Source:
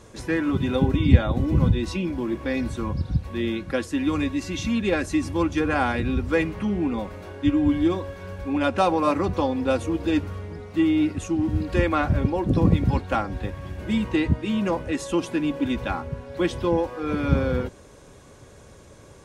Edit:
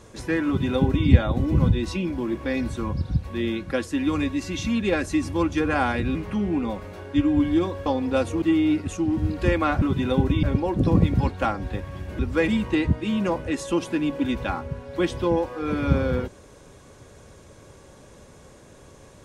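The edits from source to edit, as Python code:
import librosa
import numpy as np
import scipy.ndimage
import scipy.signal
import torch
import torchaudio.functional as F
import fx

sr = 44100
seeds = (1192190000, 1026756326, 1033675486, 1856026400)

y = fx.edit(x, sr, fx.duplicate(start_s=0.46, length_s=0.61, to_s=12.13),
    fx.move(start_s=6.15, length_s=0.29, to_s=13.89),
    fx.cut(start_s=8.15, length_s=1.25),
    fx.cut(start_s=9.96, length_s=0.77), tone=tone)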